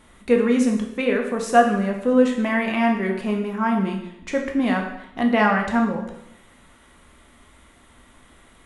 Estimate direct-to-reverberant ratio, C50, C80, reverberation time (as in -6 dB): 1.5 dB, 6.0 dB, 9.0 dB, 0.80 s